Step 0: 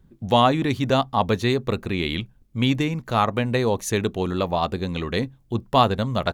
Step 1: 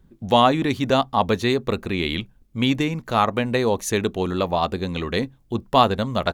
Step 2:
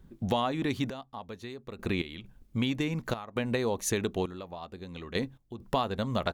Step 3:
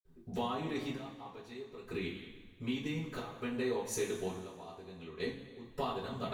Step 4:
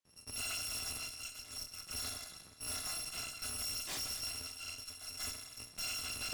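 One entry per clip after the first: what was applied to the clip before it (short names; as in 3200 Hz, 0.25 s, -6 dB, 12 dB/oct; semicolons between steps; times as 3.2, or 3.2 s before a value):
bell 120 Hz -5 dB 0.74 oct; gain +1.5 dB
compressor 6:1, threshold -26 dBFS, peak gain reduction 15 dB; step gate "xxxx....x.xxxx." 67 bpm -12 dB
reverb, pre-delay 46 ms; gain +11 dB
FFT order left unsorted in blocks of 256 samples; BPF 100–7700 Hz; tube stage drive 49 dB, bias 0.75; gain +11.5 dB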